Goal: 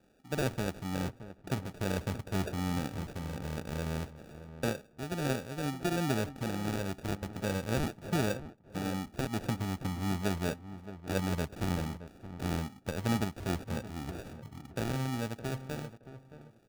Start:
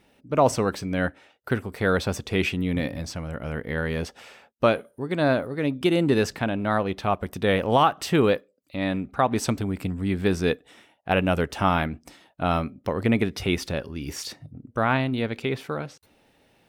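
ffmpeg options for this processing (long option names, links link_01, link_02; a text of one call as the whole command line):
ffmpeg -i in.wav -filter_complex "[0:a]acrossover=split=220[link_01][link_02];[link_02]acompressor=threshold=-42dB:ratio=1.5[link_03];[link_01][link_03]amix=inputs=2:normalize=0,acrusher=samples=42:mix=1:aa=0.000001,asplit=2[link_04][link_05];[link_05]adelay=621,lowpass=frequency=1400:poles=1,volume=-12.5dB,asplit=2[link_06][link_07];[link_07]adelay=621,lowpass=frequency=1400:poles=1,volume=0.23,asplit=2[link_08][link_09];[link_09]adelay=621,lowpass=frequency=1400:poles=1,volume=0.23[link_10];[link_04][link_06][link_08][link_10]amix=inputs=4:normalize=0,volume=-5.5dB" out.wav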